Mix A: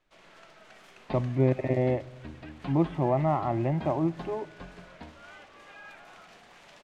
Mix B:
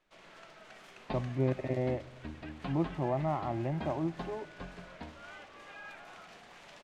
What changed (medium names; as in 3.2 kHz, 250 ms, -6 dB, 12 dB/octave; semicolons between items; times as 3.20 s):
speech -6.5 dB; master: add treble shelf 12 kHz -3.5 dB